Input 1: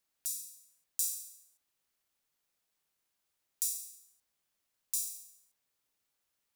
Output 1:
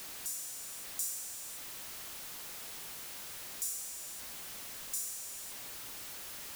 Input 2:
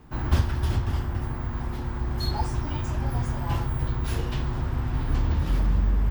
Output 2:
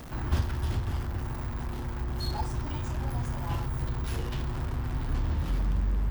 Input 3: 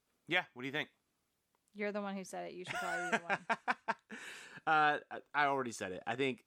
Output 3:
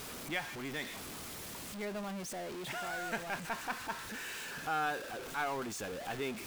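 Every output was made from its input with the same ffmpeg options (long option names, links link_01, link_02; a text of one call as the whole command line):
ffmpeg -i in.wav -af "aeval=exprs='val(0)+0.5*0.0237*sgn(val(0))':channel_layout=same,volume=-6dB" out.wav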